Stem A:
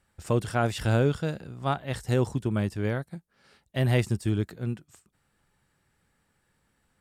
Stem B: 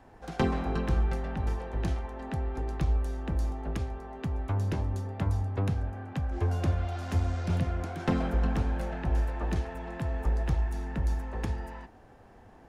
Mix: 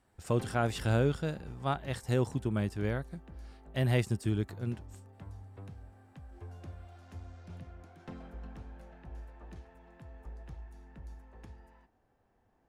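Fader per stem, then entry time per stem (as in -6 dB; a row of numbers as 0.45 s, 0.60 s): -4.5 dB, -18.5 dB; 0.00 s, 0.00 s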